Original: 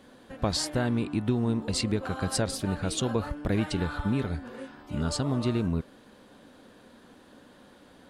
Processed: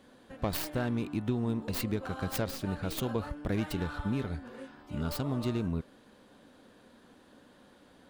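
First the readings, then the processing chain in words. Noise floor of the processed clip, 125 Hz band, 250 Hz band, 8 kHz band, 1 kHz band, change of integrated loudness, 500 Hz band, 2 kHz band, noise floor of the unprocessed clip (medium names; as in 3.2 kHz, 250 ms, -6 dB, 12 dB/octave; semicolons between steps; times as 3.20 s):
-60 dBFS, -4.5 dB, -4.5 dB, -10.0 dB, -4.5 dB, -4.5 dB, -4.5 dB, -4.0 dB, -55 dBFS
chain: tracing distortion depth 0.27 ms; trim -4.5 dB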